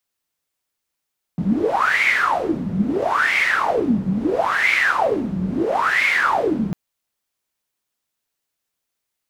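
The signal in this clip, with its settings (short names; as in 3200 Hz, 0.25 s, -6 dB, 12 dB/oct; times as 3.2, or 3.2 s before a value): wind-like swept noise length 5.35 s, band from 180 Hz, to 2200 Hz, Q 12, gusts 4, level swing 4 dB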